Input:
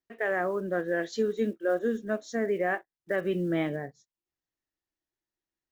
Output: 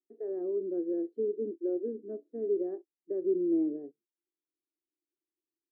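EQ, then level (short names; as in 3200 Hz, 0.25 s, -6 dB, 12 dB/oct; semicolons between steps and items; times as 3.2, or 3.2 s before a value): Butterworth band-pass 340 Hz, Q 2.6; +2.5 dB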